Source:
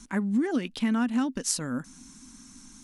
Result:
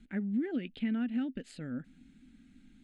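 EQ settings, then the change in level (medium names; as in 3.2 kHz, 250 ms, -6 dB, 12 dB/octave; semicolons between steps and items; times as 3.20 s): distance through air 150 m; static phaser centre 2.5 kHz, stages 4; -5.5 dB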